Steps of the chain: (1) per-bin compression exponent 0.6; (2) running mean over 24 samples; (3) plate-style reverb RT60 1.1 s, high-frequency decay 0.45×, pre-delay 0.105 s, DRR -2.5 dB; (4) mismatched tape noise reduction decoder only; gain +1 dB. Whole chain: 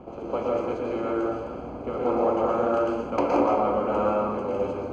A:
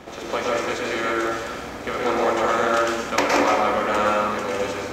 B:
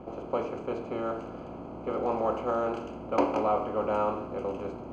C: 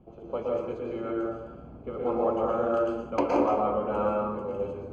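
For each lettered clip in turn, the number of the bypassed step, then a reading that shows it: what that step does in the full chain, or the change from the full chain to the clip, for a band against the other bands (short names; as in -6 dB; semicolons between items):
2, 2 kHz band +15.5 dB; 3, loudness change -5.0 LU; 1, momentary loudness spread change +2 LU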